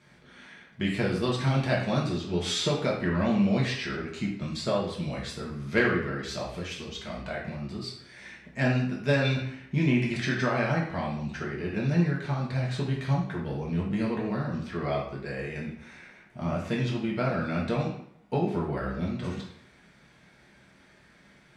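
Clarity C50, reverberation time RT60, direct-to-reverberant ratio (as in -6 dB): 4.0 dB, 0.70 s, -3.5 dB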